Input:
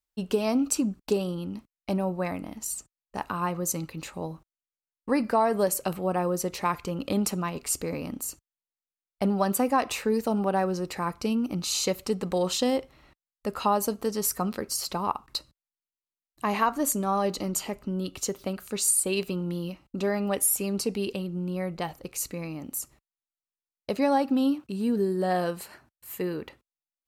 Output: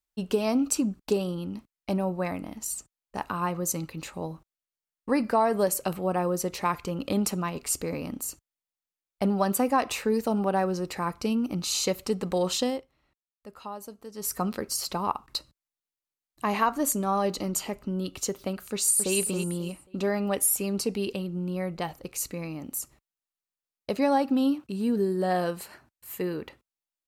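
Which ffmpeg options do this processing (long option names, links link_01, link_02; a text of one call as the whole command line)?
ffmpeg -i in.wav -filter_complex "[0:a]asplit=2[link_01][link_02];[link_02]afade=type=in:start_time=18.72:duration=0.01,afade=type=out:start_time=19.16:duration=0.01,aecho=0:1:270|540|810:0.473151|0.118288|0.029572[link_03];[link_01][link_03]amix=inputs=2:normalize=0,asplit=3[link_04][link_05][link_06];[link_04]atrim=end=12.85,asetpts=PTS-STARTPTS,afade=type=out:start_time=12.59:duration=0.26:silence=0.188365[link_07];[link_05]atrim=start=12.85:end=14.13,asetpts=PTS-STARTPTS,volume=-14.5dB[link_08];[link_06]atrim=start=14.13,asetpts=PTS-STARTPTS,afade=type=in:duration=0.26:silence=0.188365[link_09];[link_07][link_08][link_09]concat=n=3:v=0:a=1" out.wav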